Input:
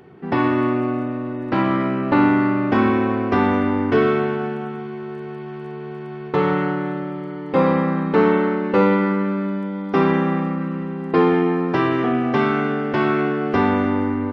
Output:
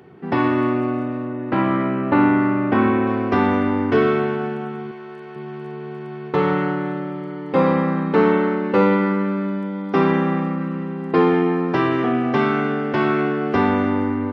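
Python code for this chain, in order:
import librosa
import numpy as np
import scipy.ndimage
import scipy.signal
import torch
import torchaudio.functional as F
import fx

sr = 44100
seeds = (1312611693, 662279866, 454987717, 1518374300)

y = fx.lowpass(x, sr, hz=3000.0, slope=12, at=(1.25, 3.07))
y = fx.low_shelf(y, sr, hz=330.0, db=-12.0, at=(4.91, 5.36))
y = scipy.signal.sosfilt(scipy.signal.butter(2, 59.0, 'highpass', fs=sr, output='sos'), y)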